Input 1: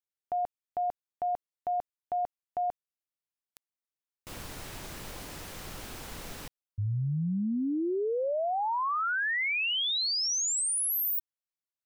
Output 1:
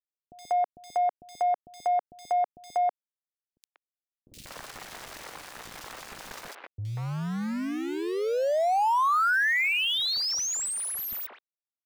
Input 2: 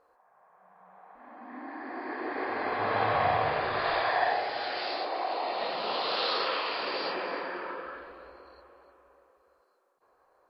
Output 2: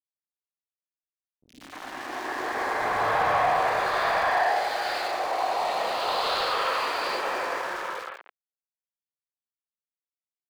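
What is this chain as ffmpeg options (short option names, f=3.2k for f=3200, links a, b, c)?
-filter_complex "[0:a]aeval=exprs='val(0)*gte(abs(val(0)),0.0133)':c=same,asplit=2[a][b];[b]highpass=f=720:p=1,volume=15dB,asoftclip=type=tanh:threshold=-13dB[c];[a][c]amix=inputs=2:normalize=0,lowpass=f=2.6k:p=1,volume=-6dB,acrossover=split=330|2900[d][e][f];[f]adelay=70[g];[e]adelay=190[h];[d][h][g]amix=inputs=3:normalize=0"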